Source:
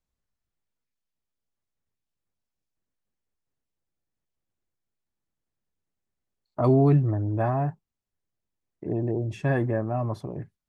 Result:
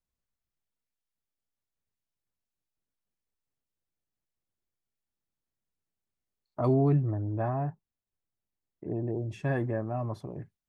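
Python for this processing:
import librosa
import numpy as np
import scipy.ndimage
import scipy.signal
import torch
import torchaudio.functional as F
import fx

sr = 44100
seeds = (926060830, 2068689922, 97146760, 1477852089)

y = fx.high_shelf(x, sr, hz=3000.0, db=-8.0, at=(6.74, 9.13))
y = y * librosa.db_to_amplitude(-5.0)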